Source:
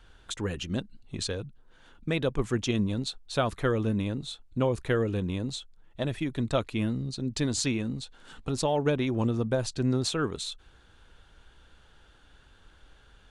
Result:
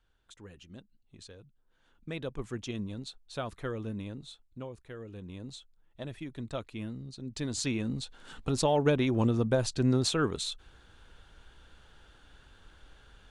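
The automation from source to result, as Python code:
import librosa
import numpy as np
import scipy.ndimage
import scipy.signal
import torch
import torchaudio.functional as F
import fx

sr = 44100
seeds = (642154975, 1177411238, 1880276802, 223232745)

y = fx.gain(x, sr, db=fx.line((1.33, -18.0), (2.16, -9.5), (4.3, -9.5), (4.86, -19.5), (5.49, -10.0), (7.17, -10.0), (8.0, 0.5)))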